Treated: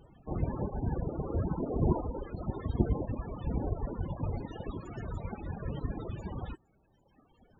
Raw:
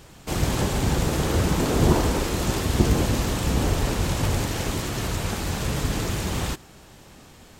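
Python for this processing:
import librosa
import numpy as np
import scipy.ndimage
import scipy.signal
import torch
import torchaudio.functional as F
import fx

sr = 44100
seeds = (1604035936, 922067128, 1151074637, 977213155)

y = fx.spec_topn(x, sr, count=32)
y = fx.dereverb_blind(y, sr, rt60_s=2.0)
y = y * 10.0 ** (-7.0 / 20.0)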